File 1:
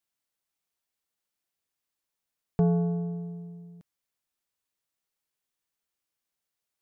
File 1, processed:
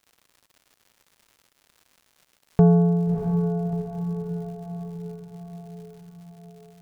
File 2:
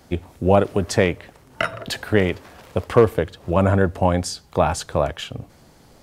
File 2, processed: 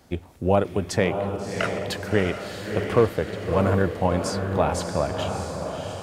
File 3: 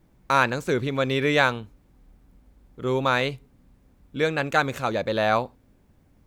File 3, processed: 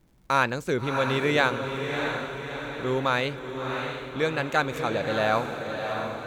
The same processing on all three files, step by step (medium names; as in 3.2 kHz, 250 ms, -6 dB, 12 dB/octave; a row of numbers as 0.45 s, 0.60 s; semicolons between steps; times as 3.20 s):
on a send: echo that smears into a reverb 655 ms, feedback 55%, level -5.5 dB; on the sum: crackle 210 per s -52 dBFS; peak normalisation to -6 dBFS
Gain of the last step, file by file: +8.0 dB, -4.5 dB, -2.5 dB